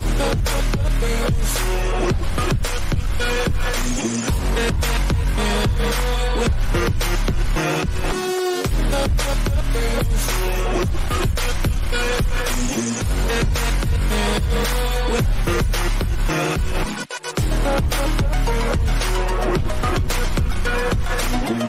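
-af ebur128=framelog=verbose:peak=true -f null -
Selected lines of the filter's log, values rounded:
Integrated loudness:
  I:         -21.5 LUFS
  Threshold: -31.5 LUFS
Loudness range:
  LRA:         1.0 LU
  Threshold: -41.5 LUFS
  LRA low:   -21.9 LUFS
  LRA high:  -20.9 LUFS
True peak:
  Peak:      -11.3 dBFS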